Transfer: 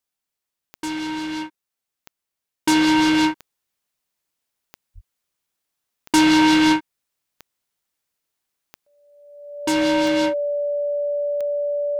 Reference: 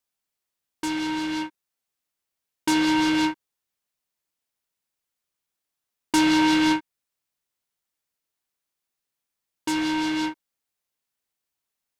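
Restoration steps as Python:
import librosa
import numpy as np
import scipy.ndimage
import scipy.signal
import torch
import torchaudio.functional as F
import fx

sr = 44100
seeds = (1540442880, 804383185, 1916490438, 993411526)

y = fx.fix_declick_ar(x, sr, threshold=10.0)
y = fx.notch(y, sr, hz=580.0, q=30.0)
y = fx.highpass(y, sr, hz=140.0, slope=24, at=(4.94, 5.06), fade=0.02)
y = fx.fix_level(y, sr, at_s=2.65, step_db=-4.5)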